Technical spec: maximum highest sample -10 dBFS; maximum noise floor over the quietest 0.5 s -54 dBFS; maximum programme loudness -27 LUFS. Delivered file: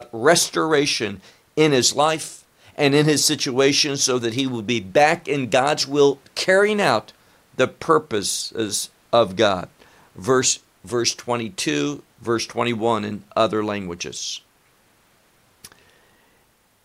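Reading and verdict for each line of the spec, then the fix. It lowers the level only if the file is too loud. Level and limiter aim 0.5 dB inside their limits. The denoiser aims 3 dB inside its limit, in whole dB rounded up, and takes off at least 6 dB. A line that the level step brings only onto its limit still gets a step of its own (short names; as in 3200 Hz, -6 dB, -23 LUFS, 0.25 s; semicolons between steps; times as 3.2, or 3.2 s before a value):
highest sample -4.5 dBFS: fail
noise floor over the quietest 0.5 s -60 dBFS: OK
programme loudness -20.0 LUFS: fail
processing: gain -7.5 dB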